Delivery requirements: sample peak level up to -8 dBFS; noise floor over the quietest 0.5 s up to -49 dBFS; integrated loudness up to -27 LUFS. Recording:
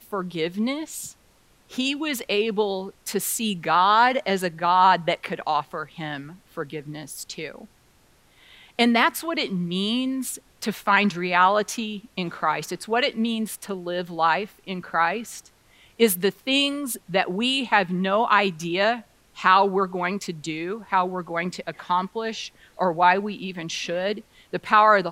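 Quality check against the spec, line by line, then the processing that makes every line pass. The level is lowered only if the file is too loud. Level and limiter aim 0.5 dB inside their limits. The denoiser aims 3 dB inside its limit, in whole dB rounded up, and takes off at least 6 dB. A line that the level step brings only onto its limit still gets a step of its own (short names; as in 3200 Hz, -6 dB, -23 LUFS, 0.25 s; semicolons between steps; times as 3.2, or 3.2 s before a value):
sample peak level -4.5 dBFS: fail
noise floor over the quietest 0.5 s -59 dBFS: OK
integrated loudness -23.5 LUFS: fail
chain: gain -4 dB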